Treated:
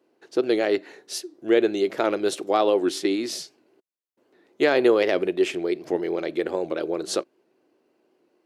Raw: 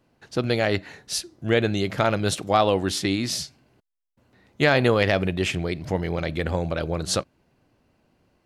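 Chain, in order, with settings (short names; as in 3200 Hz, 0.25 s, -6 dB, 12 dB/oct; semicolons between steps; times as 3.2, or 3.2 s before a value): resonant high-pass 360 Hz, resonance Q 3.9; record warp 78 rpm, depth 100 cents; gain -4.5 dB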